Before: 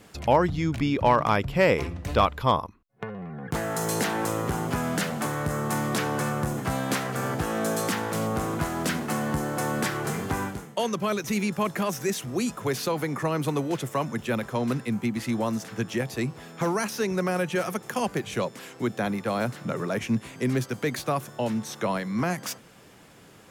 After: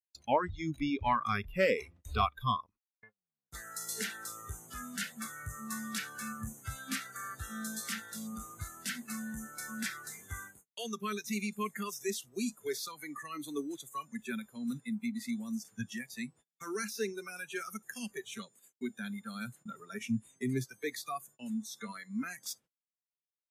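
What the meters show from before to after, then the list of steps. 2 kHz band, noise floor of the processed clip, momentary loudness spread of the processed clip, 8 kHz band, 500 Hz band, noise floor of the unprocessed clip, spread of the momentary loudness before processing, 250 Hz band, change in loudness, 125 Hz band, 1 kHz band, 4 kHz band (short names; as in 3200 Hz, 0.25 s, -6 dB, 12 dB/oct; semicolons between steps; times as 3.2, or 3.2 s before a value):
-8.5 dB, under -85 dBFS, 12 LU, -6.0 dB, -12.5 dB, -51 dBFS, 8 LU, -10.5 dB, -10.0 dB, -15.0 dB, -10.0 dB, -7.5 dB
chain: spectral noise reduction 23 dB; gate -50 dBFS, range -36 dB; gain -6 dB; MP3 64 kbps 32000 Hz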